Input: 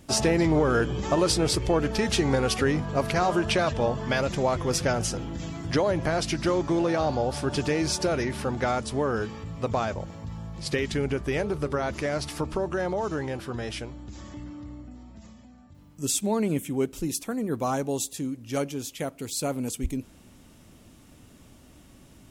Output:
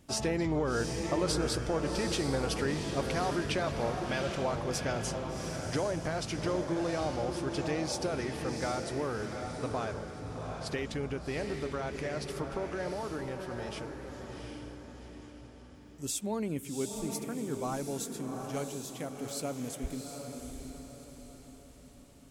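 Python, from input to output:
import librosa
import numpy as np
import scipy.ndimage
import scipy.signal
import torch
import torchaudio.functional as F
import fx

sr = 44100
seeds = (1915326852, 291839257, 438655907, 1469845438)

p1 = x + fx.echo_diffused(x, sr, ms=746, feedback_pct=43, wet_db=-5.0, dry=0)
y = p1 * librosa.db_to_amplitude(-8.5)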